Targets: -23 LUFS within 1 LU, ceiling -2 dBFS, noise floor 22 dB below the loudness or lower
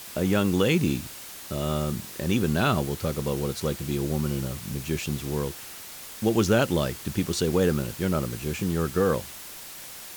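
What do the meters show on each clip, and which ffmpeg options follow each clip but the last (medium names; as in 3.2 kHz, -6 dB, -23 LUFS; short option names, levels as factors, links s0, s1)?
noise floor -41 dBFS; noise floor target -49 dBFS; loudness -26.5 LUFS; peak level -9.5 dBFS; loudness target -23.0 LUFS
-> -af "afftdn=nr=8:nf=-41"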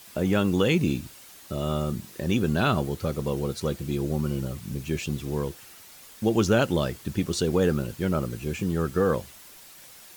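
noise floor -49 dBFS; loudness -27.0 LUFS; peak level -9.5 dBFS; loudness target -23.0 LUFS
-> -af "volume=1.58"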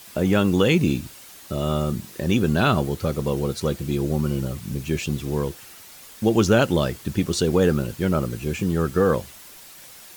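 loudness -23.0 LUFS; peak level -5.5 dBFS; noise floor -45 dBFS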